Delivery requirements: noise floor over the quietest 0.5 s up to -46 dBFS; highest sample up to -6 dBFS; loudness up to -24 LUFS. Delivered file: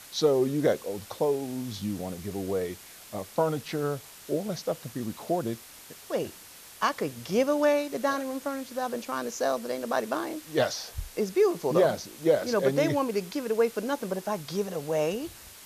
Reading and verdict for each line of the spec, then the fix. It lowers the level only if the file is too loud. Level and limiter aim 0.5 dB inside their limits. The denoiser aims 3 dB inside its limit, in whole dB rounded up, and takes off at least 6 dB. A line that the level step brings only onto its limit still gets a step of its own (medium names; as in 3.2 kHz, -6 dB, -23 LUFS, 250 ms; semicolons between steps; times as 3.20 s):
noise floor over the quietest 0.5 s -49 dBFS: pass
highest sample -12.0 dBFS: pass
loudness -29.0 LUFS: pass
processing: none needed